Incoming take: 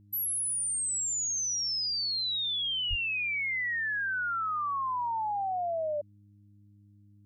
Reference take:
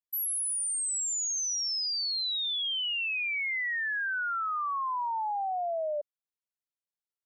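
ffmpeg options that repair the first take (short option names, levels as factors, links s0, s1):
-filter_complex "[0:a]bandreject=f=101.9:t=h:w=4,bandreject=f=203.8:t=h:w=4,bandreject=f=305.7:t=h:w=4,asplit=3[s0][s1][s2];[s0]afade=t=out:st=2.89:d=0.02[s3];[s1]highpass=f=140:w=0.5412,highpass=f=140:w=1.3066,afade=t=in:st=2.89:d=0.02,afade=t=out:st=3.01:d=0.02[s4];[s2]afade=t=in:st=3.01:d=0.02[s5];[s3][s4][s5]amix=inputs=3:normalize=0"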